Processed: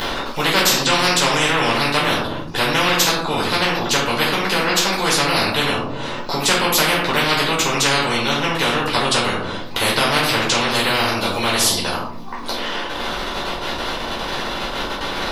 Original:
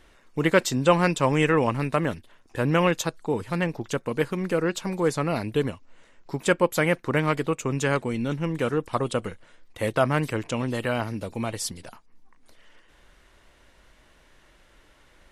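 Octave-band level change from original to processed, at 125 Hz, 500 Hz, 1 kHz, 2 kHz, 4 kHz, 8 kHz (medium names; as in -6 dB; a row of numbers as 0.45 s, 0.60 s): +0.5 dB, +3.0 dB, +10.0 dB, +11.5 dB, +20.0 dB, +15.0 dB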